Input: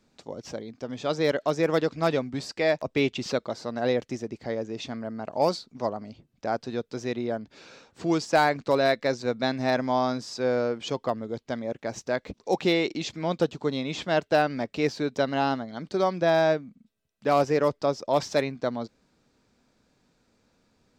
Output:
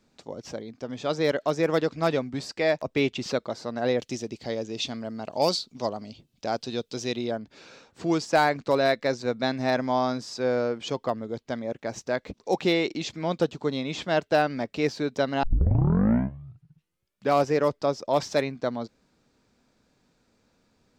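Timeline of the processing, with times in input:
3.99–7.31 resonant high shelf 2400 Hz +7 dB, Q 1.5
15.43 tape start 1.90 s

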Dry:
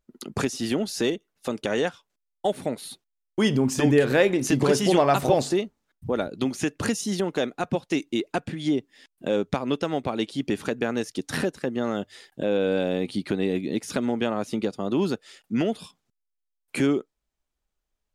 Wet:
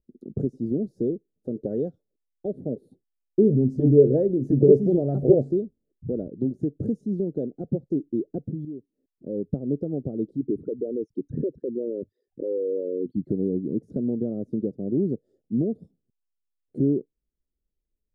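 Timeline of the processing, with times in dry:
1.56–6.12 LFO bell 1.6 Hz 380–4500 Hz +10 dB
8.65–9.56 fade in quadratic, from -13 dB
10.36–13.27 formant sharpening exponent 3
whole clip: inverse Chebyshev low-pass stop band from 950 Hz, stop band 40 dB; dynamic EQ 140 Hz, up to +5 dB, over -43 dBFS, Q 2.9

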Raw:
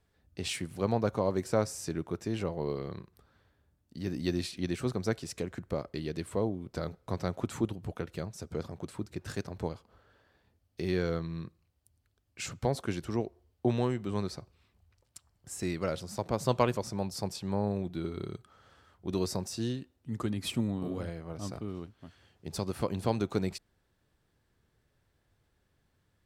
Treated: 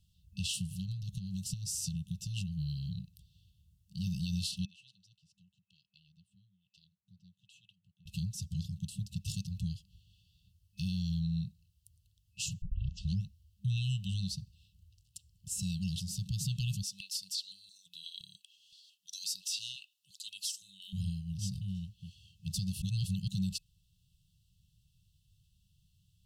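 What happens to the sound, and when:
0.54–2.54 compressor, threshold -31 dBFS
4.65–8.06 wah 1.1 Hz 680–2400 Hz, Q 5.6
12.62 tape start 0.64 s
13.76–14.29 bell 1700 Hz +10.5 dB 2.1 oct
16.83–20.93 stepped high-pass 5.8 Hz 740–5600 Hz
22.82–23.28 reverse
whole clip: FFT band-reject 200–2600 Hz; limiter -30.5 dBFS; gain +5 dB

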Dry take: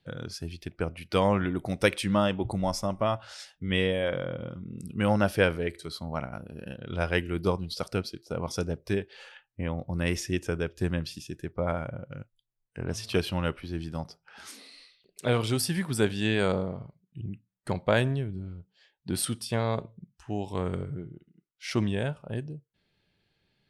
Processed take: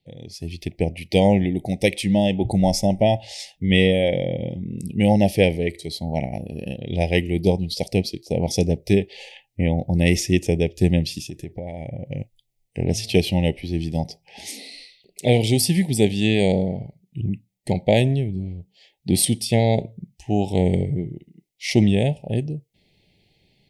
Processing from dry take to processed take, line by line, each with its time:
11.22–12.09 compressor 12:1, threshold -38 dBFS
whole clip: elliptic band-stop 810–2000 Hz, stop band 50 dB; dynamic EQ 190 Hz, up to +3 dB, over -41 dBFS, Q 3.8; AGC gain up to 14.5 dB; gain -2.5 dB

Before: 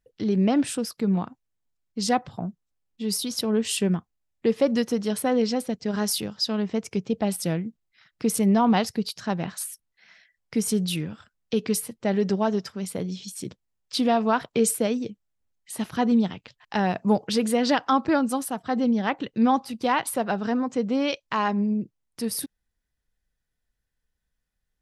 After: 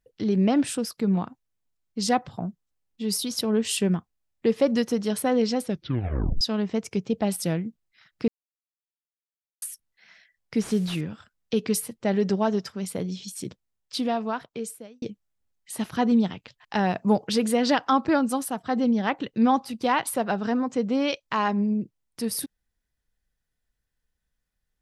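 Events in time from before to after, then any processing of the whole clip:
5.64 tape stop 0.77 s
8.28–9.62 mute
10.61–11.01 delta modulation 64 kbps, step -42 dBFS
13.46–15.02 fade out

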